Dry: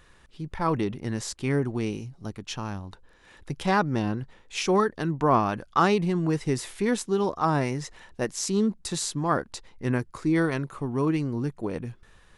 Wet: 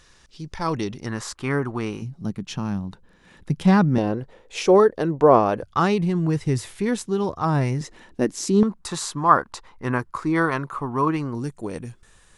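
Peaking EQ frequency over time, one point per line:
peaking EQ +13 dB 1.1 oct
5.6 kHz
from 1.06 s 1.2 kHz
from 2.02 s 180 Hz
from 3.98 s 510 Hz
from 5.63 s 99 Hz
from 7.81 s 280 Hz
from 8.63 s 1.1 kHz
from 11.35 s 8.1 kHz

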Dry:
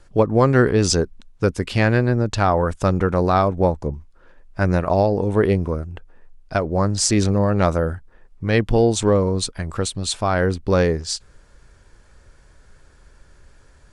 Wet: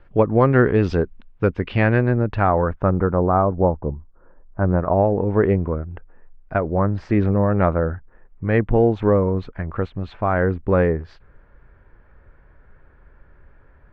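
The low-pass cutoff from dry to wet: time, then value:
low-pass 24 dB/octave
2.13 s 2.8 kHz
3.24 s 1.3 kHz
4.72 s 1.3 kHz
5.12 s 2.1 kHz

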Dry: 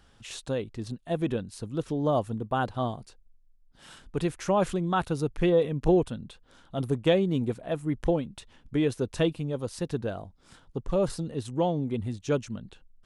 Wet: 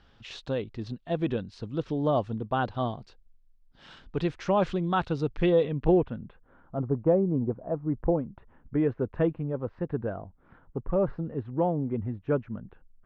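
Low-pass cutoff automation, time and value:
low-pass 24 dB/octave
5.61 s 4.8 kHz
5.97 s 2.6 kHz
7.08 s 1.1 kHz
7.65 s 1.1 kHz
8.84 s 1.8 kHz

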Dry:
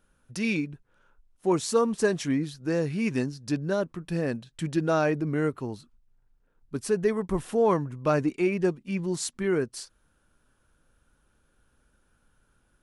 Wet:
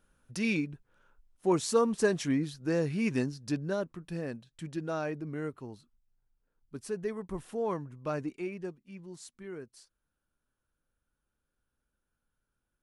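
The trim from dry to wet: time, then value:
3.30 s -2.5 dB
4.48 s -10 dB
8.28 s -10 dB
8.91 s -17 dB

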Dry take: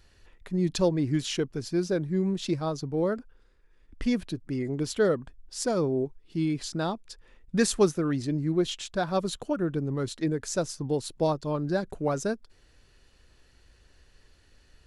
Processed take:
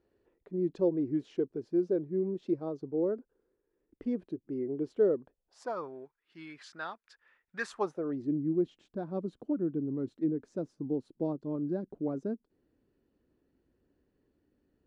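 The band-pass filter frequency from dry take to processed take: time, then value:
band-pass filter, Q 2.1
5.16 s 380 Hz
5.99 s 1.6 kHz
7.57 s 1.6 kHz
8.31 s 280 Hz

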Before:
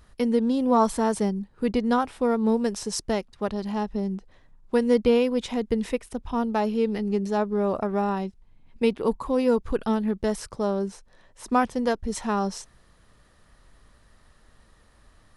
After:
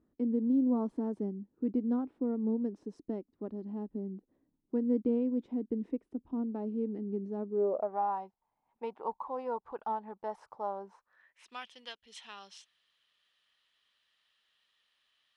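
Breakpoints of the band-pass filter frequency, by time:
band-pass filter, Q 4.4
7.47 s 290 Hz
7.99 s 860 Hz
10.88 s 860 Hz
11.53 s 3.1 kHz

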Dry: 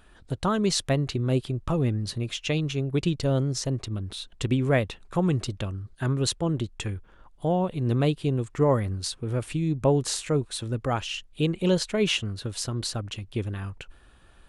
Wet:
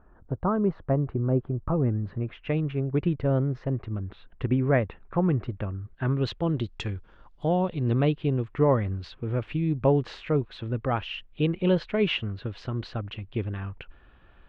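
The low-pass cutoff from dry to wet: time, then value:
low-pass 24 dB/octave
1.49 s 1.3 kHz
2.53 s 2.1 kHz
5.75 s 2.1 kHz
6.86 s 5.3 kHz
7.47 s 5.3 kHz
8.02 s 3 kHz

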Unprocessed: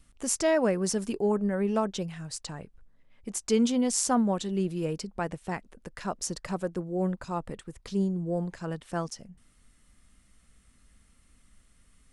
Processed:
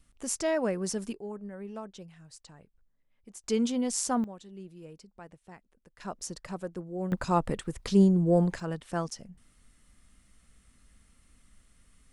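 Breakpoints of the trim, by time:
-4 dB
from 1.13 s -13.5 dB
from 3.44 s -3.5 dB
from 4.24 s -16.5 dB
from 6.00 s -5.5 dB
from 7.12 s +7 dB
from 8.60 s 0 dB

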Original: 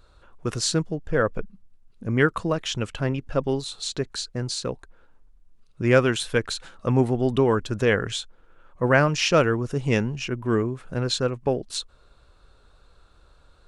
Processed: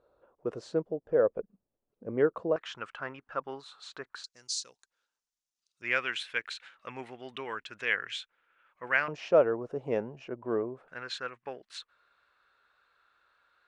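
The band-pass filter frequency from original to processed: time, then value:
band-pass filter, Q 2.1
520 Hz
from 2.56 s 1.3 kHz
from 4.24 s 6 kHz
from 5.82 s 2.2 kHz
from 9.08 s 610 Hz
from 10.88 s 1.8 kHz

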